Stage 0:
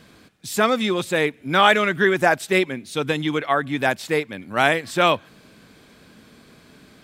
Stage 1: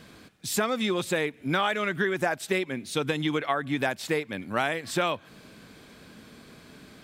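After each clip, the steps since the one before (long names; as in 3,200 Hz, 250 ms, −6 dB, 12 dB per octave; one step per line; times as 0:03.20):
downward compressor 6 to 1, threshold −23 dBFS, peak gain reduction 12.5 dB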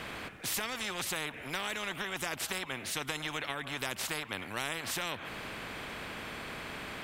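high shelf with overshoot 3,200 Hz −9.5 dB, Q 1.5
every bin compressed towards the loudest bin 4 to 1
level −7.5 dB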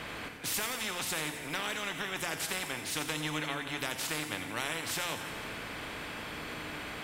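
delay with a high-pass on its return 87 ms, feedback 60%, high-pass 4,600 Hz, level −7 dB
feedback delay network reverb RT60 1.6 s, low-frequency decay 1.2×, high-frequency decay 0.95×, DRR 6.5 dB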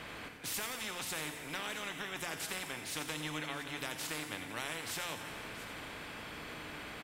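single-tap delay 682 ms −14.5 dB
level −5 dB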